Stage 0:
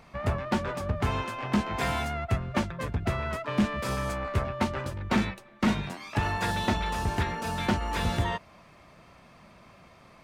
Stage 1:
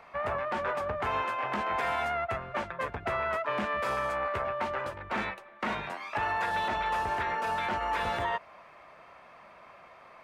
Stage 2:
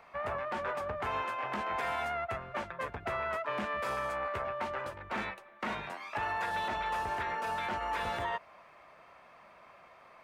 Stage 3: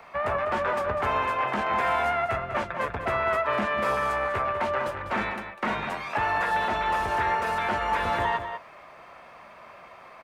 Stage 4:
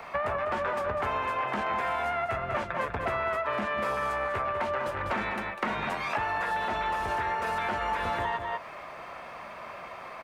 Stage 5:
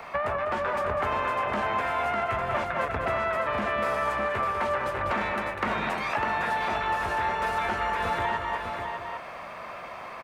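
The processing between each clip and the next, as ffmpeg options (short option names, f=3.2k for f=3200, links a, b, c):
-filter_complex "[0:a]acrossover=split=460 2600:gain=0.126 1 0.2[a][b][c];[a][b][c]amix=inputs=3:normalize=0,alimiter=level_in=2.5dB:limit=-24dB:level=0:latency=1:release=61,volume=-2.5dB,volume=5dB"
-af "highshelf=f=6.9k:g=4,volume=-4dB"
-filter_complex "[0:a]acrossover=split=110|1300|2500[a][b][c][d];[d]alimiter=level_in=22dB:limit=-24dB:level=0:latency=1:release=13,volume=-22dB[e];[a][b][c][e]amix=inputs=4:normalize=0,asplit=2[f][g];[g]adelay=198.3,volume=-8dB,highshelf=f=4k:g=-4.46[h];[f][h]amix=inputs=2:normalize=0,volume=8.5dB"
-af "acompressor=threshold=-33dB:ratio=6,volume=5.5dB"
-af "aecho=1:1:602:0.531,volume=1.5dB"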